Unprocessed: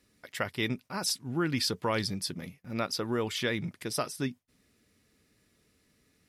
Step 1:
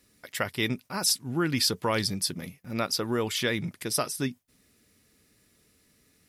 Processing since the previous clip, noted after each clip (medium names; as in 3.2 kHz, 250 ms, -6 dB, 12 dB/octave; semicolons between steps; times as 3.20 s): treble shelf 7.2 kHz +8.5 dB; trim +2.5 dB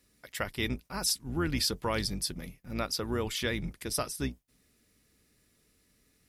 octave divider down 2 oct, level -3 dB; trim -4.5 dB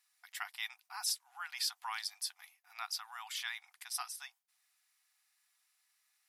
brick-wall FIR high-pass 700 Hz; trim -5.5 dB